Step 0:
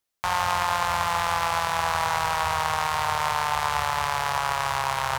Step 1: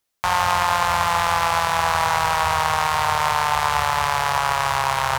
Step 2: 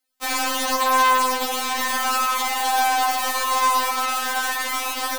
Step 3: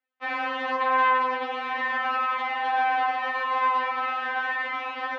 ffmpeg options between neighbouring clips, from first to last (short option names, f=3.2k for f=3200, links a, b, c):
-af "acontrast=33"
-af "aeval=exprs='(mod(2.37*val(0)+1,2)-1)/2.37':c=same,afftfilt=real='re*3.46*eq(mod(b,12),0)':imag='im*3.46*eq(mod(b,12),0)':win_size=2048:overlap=0.75,volume=1.5dB"
-af "highpass=160,equalizer=f=210:t=q:w=4:g=-7,equalizer=f=610:t=q:w=4:g=4,equalizer=f=1.8k:t=q:w=4:g=5,lowpass=f=2.7k:w=0.5412,lowpass=f=2.7k:w=1.3066,volume=-4.5dB"